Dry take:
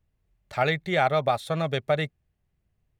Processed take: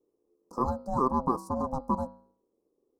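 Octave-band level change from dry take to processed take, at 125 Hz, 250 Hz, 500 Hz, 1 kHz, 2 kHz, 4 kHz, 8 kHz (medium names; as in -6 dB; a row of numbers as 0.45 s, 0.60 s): -8.0 dB, +2.5 dB, -8.0 dB, -2.0 dB, under -30 dB, under -25 dB, -5.0 dB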